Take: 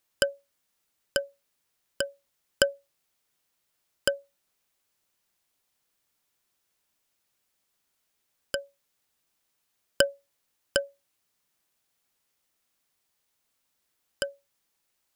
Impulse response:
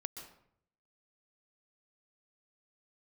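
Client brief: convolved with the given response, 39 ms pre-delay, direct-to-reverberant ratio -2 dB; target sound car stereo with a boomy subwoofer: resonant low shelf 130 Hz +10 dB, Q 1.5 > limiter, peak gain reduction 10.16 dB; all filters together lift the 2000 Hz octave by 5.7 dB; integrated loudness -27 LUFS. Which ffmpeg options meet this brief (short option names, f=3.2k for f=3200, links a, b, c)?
-filter_complex "[0:a]equalizer=f=2k:t=o:g=9,asplit=2[a][b];[1:a]atrim=start_sample=2205,adelay=39[c];[b][c]afir=irnorm=-1:irlink=0,volume=4dB[d];[a][d]amix=inputs=2:normalize=0,lowshelf=f=130:t=q:w=1.5:g=10,volume=4dB,alimiter=limit=-6.5dB:level=0:latency=1"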